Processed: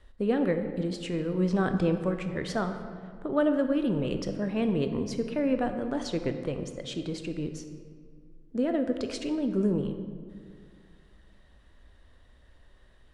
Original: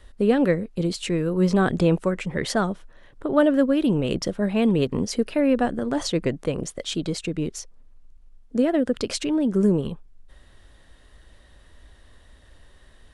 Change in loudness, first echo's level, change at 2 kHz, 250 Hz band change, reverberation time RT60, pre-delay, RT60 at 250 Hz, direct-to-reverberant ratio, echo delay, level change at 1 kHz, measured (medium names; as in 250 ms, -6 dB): -6.5 dB, no echo, -7.0 dB, -6.0 dB, 2.1 s, 15 ms, 2.3 s, 7.0 dB, no echo, -6.0 dB